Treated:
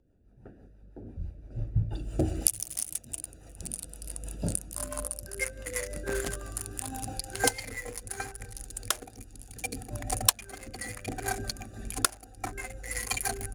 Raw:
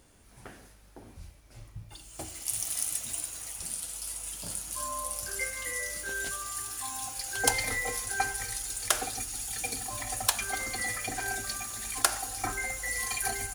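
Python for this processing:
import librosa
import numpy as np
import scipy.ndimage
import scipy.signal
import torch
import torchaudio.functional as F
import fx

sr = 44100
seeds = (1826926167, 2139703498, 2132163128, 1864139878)

y = fx.wiener(x, sr, points=41)
y = fx.recorder_agc(y, sr, target_db=-10.0, rise_db_per_s=12.0, max_gain_db=30)
y = fx.rotary(y, sr, hz=6.0)
y = F.gain(torch.from_numpy(y), -4.0).numpy()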